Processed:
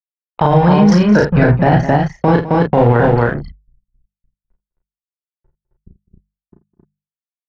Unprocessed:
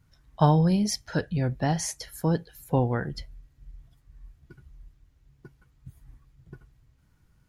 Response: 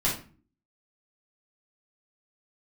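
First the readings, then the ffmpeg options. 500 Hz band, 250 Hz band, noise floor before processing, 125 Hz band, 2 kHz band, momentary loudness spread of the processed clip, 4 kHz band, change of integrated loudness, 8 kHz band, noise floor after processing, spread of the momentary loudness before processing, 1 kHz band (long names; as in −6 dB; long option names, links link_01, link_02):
+16.5 dB, +14.5 dB, −65 dBFS, +12.5 dB, +18.0 dB, 6 LU, +6.0 dB, +14.0 dB, can't be measured, below −85 dBFS, 10 LU, +15.5 dB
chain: -filter_complex "[0:a]aeval=exprs='sgn(val(0))*max(abs(val(0))-0.0112,0)':channel_layout=same,lowpass=2000,tiltshelf=frequency=1300:gain=-4.5,bandreject=frequency=50:width_type=h:width=6,bandreject=frequency=100:width_type=h:width=6,bandreject=frequency=150:width_type=h:width=6,bandreject=frequency=200:width_type=h:width=6,anlmdn=0.158,acrossover=split=360|1500[link_01][link_02][link_03];[link_01]acompressor=threshold=-32dB:ratio=4[link_04];[link_02]acompressor=threshold=-30dB:ratio=4[link_05];[link_03]acompressor=threshold=-48dB:ratio=4[link_06];[link_04][link_05][link_06]amix=inputs=3:normalize=0,aphaser=in_gain=1:out_gain=1:delay=2.4:decay=0.3:speed=1.2:type=triangular,asplit=2[link_07][link_08];[link_08]adelay=34,volume=-3.5dB[link_09];[link_07][link_09]amix=inputs=2:normalize=0,asplit=2[link_10][link_11];[link_11]aecho=0:1:49|205|266:0.237|0.112|0.631[link_12];[link_10][link_12]amix=inputs=2:normalize=0,alimiter=level_in=24.5dB:limit=-1dB:release=50:level=0:latency=1,volume=-1dB"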